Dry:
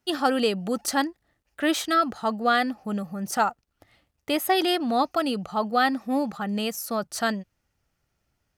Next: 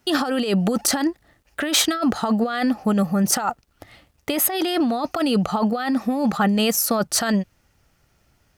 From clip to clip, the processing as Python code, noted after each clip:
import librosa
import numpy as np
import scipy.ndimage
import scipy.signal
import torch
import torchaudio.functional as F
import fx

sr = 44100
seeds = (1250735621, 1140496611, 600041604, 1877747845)

y = fx.over_compress(x, sr, threshold_db=-29.0, ratio=-1.0)
y = y * 10.0 ** (8.5 / 20.0)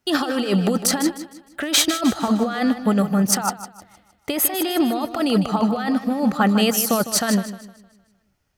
y = fx.echo_feedback(x, sr, ms=154, feedback_pct=50, wet_db=-9.5)
y = fx.upward_expand(y, sr, threshold_db=-39.0, expansion=1.5)
y = y * 10.0 ** (2.0 / 20.0)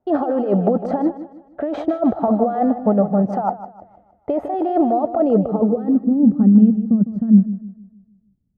y = fx.filter_sweep_lowpass(x, sr, from_hz=680.0, to_hz=210.0, start_s=5.13, end_s=6.75, q=3.1)